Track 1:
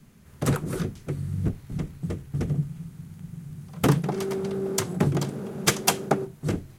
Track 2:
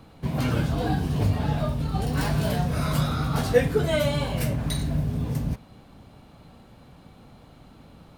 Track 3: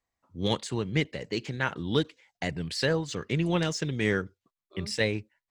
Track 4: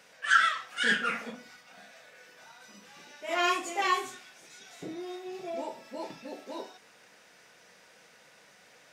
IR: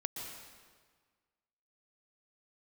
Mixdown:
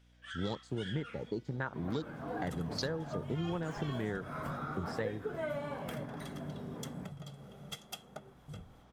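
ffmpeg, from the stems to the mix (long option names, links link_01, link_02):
-filter_complex "[0:a]aecho=1:1:1.5:0.81,flanger=delay=0.6:depth=7.5:regen=65:speed=0.46:shape=triangular,adelay=2050,volume=-13.5dB[link_01];[1:a]highpass=230,adelay=1500,volume=-10dB[link_02];[2:a]afwtdn=0.02,highshelf=frequency=3200:width_type=q:width=3:gain=10.5,volume=-0.5dB[link_03];[3:a]aeval=exprs='val(0)+0.00562*(sin(2*PI*60*n/s)+sin(2*PI*2*60*n/s)/2+sin(2*PI*3*60*n/s)/3+sin(2*PI*4*60*n/s)/4+sin(2*PI*5*60*n/s)/5)':channel_layout=same,volume=-18dB[link_04];[link_02][link_03]amix=inputs=2:normalize=0,highshelf=frequency=2400:width_type=q:width=1.5:gain=-13,acompressor=threshold=-33dB:ratio=6,volume=0dB[link_05];[link_01][link_04]amix=inputs=2:normalize=0,equalizer=frequency=3300:width=7.8:gain=14,acompressor=threshold=-45dB:ratio=3,volume=0dB[link_06];[link_05][link_06]amix=inputs=2:normalize=0"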